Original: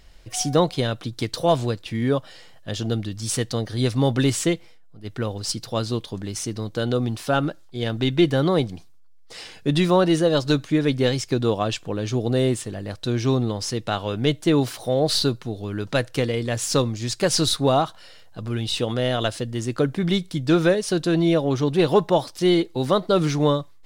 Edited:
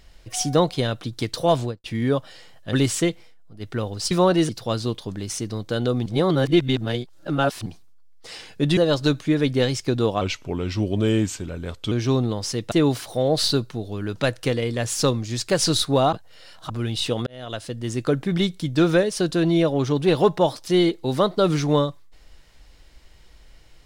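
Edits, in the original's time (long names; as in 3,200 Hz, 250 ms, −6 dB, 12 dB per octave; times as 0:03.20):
0:01.59–0:01.84: fade out and dull
0:02.73–0:04.17: remove
0:07.12–0:08.72: reverse
0:09.83–0:10.21: move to 0:05.55
0:11.65–0:13.10: play speed 85%
0:13.90–0:14.43: remove
0:17.84–0:18.41: reverse
0:18.98–0:19.63: fade in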